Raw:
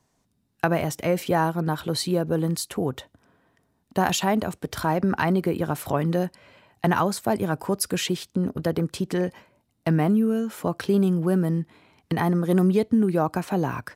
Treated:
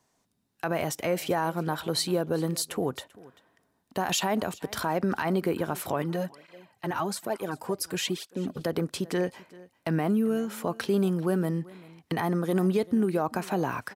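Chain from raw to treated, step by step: low shelf 190 Hz -10.5 dB; limiter -16 dBFS, peak gain reduction 10.5 dB; echo 0.39 s -21.5 dB; 6.02–8.61 tape flanging out of phase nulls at 1.1 Hz, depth 5.1 ms

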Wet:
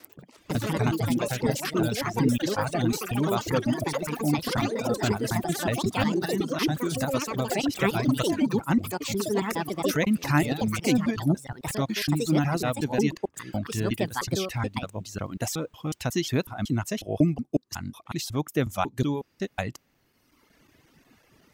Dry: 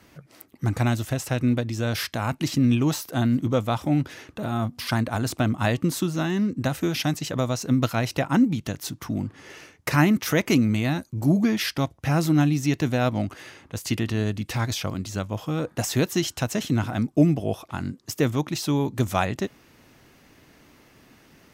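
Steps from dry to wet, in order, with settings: slices in reverse order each 0.183 s, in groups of 3; echoes that change speed 94 ms, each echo +5 st, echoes 3; reverb removal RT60 1.5 s; gain -2.5 dB

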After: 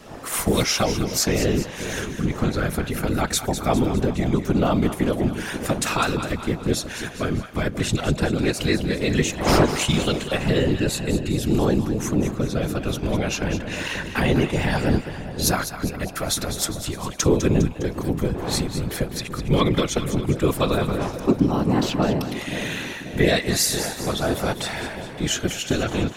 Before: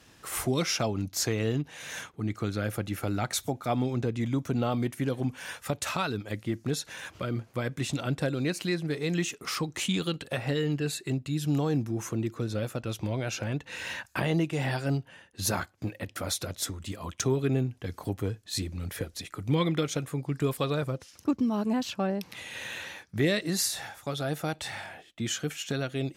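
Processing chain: wind noise 630 Hz -43 dBFS; whisperiser; split-band echo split 710 Hz, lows 0.533 s, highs 0.203 s, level -10 dB; gain +7.5 dB

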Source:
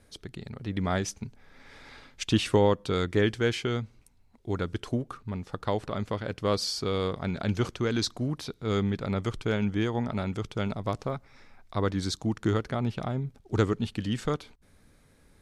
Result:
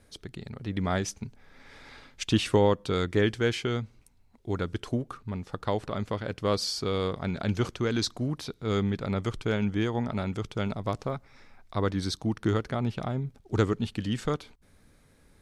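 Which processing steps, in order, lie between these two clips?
11.93–12.49 notch 7100 Hz, Q 5.1

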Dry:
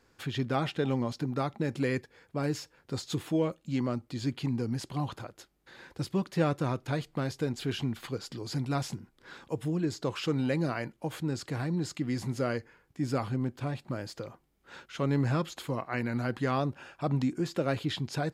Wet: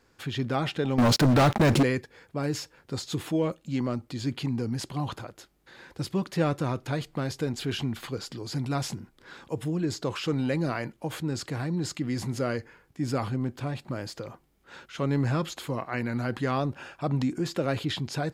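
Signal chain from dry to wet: 0.98–1.83 sample leveller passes 5; transient shaper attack 0 dB, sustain +4 dB; gain +1.5 dB

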